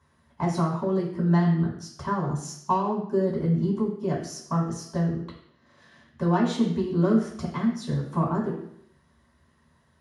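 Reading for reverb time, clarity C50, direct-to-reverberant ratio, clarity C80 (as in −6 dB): 0.70 s, 6.0 dB, −4.0 dB, 9.0 dB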